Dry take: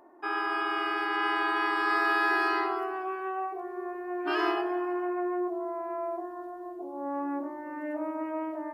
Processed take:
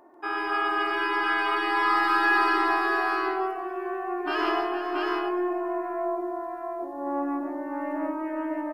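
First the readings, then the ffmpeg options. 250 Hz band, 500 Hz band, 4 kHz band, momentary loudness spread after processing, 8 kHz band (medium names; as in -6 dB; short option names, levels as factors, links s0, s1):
+3.5 dB, +3.0 dB, +4.0 dB, 11 LU, no reading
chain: -af "aeval=exprs='0.188*(cos(1*acos(clip(val(0)/0.188,-1,1)))-cos(1*PI/2))+0.0119*(cos(2*acos(clip(val(0)/0.188,-1,1)))-cos(2*PI/2))':c=same,aecho=1:1:142|460|677:0.562|0.282|0.708,volume=1.19"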